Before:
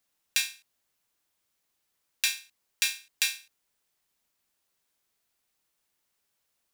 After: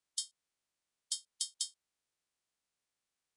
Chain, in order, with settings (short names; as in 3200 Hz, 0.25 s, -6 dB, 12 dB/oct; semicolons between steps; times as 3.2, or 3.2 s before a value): bin magnitudes rounded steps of 30 dB; speed mistake 7.5 ips tape played at 15 ips; downsampling 22050 Hz; gain -5.5 dB